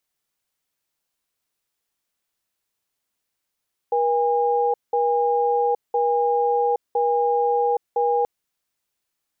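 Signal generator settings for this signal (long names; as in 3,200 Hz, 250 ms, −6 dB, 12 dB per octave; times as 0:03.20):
tone pair in a cadence 479 Hz, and 814 Hz, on 0.82 s, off 0.19 s, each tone −20 dBFS 4.33 s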